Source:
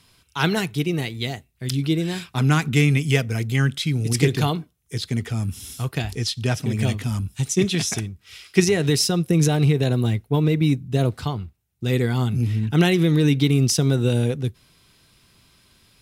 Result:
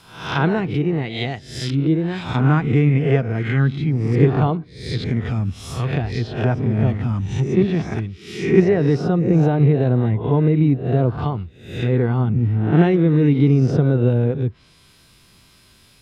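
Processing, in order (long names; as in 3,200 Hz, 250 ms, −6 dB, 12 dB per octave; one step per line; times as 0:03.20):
peak hold with a rise ahead of every peak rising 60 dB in 0.61 s
backwards echo 57 ms −14 dB
treble cut that deepens with the level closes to 1,200 Hz, closed at −18 dBFS
level +2.5 dB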